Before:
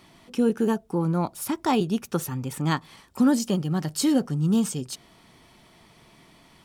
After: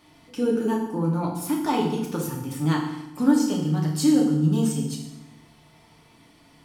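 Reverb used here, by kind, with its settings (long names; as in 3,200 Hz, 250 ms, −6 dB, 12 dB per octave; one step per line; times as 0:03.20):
feedback delay network reverb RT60 0.89 s, low-frequency decay 1.4×, high-frequency decay 0.9×, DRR −2 dB
level −5 dB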